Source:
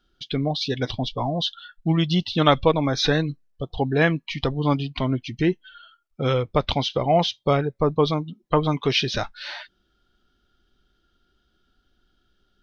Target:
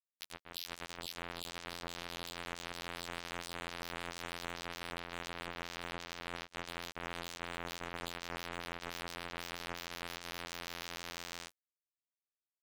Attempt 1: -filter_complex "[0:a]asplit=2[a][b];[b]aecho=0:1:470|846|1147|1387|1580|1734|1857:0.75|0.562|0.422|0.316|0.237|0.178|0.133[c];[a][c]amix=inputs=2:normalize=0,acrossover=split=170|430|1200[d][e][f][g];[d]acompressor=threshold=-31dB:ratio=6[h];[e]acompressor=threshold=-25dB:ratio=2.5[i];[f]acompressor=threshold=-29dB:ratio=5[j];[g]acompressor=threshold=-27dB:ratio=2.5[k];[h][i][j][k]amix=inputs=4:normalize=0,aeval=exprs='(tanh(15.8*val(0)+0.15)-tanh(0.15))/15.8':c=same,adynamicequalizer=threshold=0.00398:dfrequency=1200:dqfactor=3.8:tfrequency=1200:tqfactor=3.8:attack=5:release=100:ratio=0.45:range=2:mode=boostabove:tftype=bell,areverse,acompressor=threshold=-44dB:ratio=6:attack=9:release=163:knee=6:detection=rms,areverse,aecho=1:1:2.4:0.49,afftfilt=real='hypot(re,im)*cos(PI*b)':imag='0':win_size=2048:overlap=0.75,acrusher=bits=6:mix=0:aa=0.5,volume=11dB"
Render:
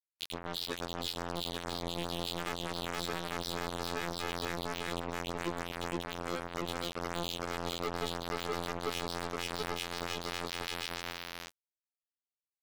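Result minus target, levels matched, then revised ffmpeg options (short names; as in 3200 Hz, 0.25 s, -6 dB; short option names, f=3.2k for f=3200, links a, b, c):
compressor: peak gain reduction -6 dB
-filter_complex "[0:a]asplit=2[a][b];[b]aecho=0:1:470|846|1147|1387|1580|1734|1857:0.75|0.562|0.422|0.316|0.237|0.178|0.133[c];[a][c]amix=inputs=2:normalize=0,acrossover=split=170|430|1200[d][e][f][g];[d]acompressor=threshold=-31dB:ratio=6[h];[e]acompressor=threshold=-25dB:ratio=2.5[i];[f]acompressor=threshold=-29dB:ratio=5[j];[g]acompressor=threshold=-27dB:ratio=2.5[k];[h][i][j][k]amix=inputs=4:normalize=0,aeval=exprs='(tanh(15.8*val(0)+0.15)-tanh(0.15))/15.8':c=same,adynamicequalizer=threshold=0.00398:dfrequency=1200:dqfactor=3.8:tfrequency=1200:tqfactor=3.8:attack=5:release=100:ratio=0.45:range=2:mode=boostabove:tftype=bell,areverse,acompressor=threshold=-51.5dB:ratio=6:attack=9:release=163:knee=6:detection=rms,areverse,aecho=1:1:2.4:0.49,afftfilt=real='hypot(re,im)*cos(PI*b)':imag='0':win_size=2048:overlap=0.75,acrusher=bits=6:mix=0:aa=0.5,volume=11dB"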